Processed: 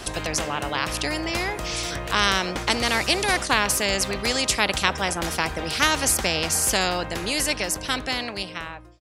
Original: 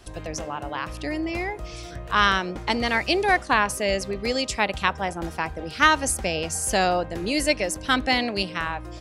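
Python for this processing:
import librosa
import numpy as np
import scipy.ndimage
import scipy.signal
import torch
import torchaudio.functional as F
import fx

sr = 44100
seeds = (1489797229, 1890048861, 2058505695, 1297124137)

y = fx.fade_out_tail(x, sr, length_s=2.76)
y = fx.spectral_comp(y, sr, ratio=2.0)
y = y * librosa.db_to_amplitude(1.0)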